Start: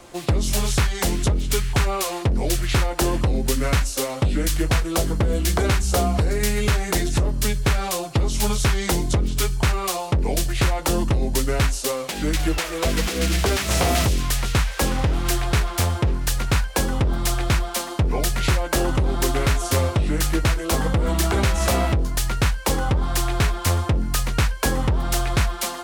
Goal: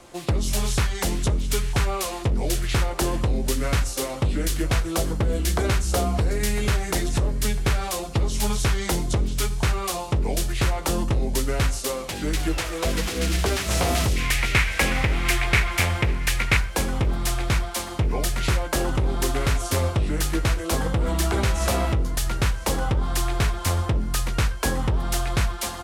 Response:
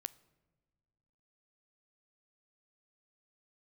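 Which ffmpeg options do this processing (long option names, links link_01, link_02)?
-filter_complex "[0:a]asettb=1/sr,asplit=3[link_01][link_02][link_03];[link_01]atrim=end=14.164[link_04];[link_02]atrim=start=14.16:end=16.57,asetpts=PTS-STARTPTS,afade=type=in:duration=0.004:curve=qsin,afade=type=out:start_time=2.406:duration=0.004:curve=qsin,equalizer=frequency=2200:width=1.7:gain=14.5[link_05];[link_03]atrim=start=16.566[link_06];[link_04][link_05]acrossfade=duration=0.004:curve1=hsin:curve2=qsin[link_07];[link_07][link_06]acrossfade=duration=0.004:curve1=qsin:curve2=hsin,aecho=1:1:1002|2004|3006|4008|5010:0.141|0.0791|0.0443|0.0248|0.0139[link_08];[1:a]atrim=start_sample=2205,atrim=end_sample=3528,asetrate=25578,aresample=44100[link_09];[link_08][link_09]afir=irnorm=-1:irlink=0,volume=-2.5dB"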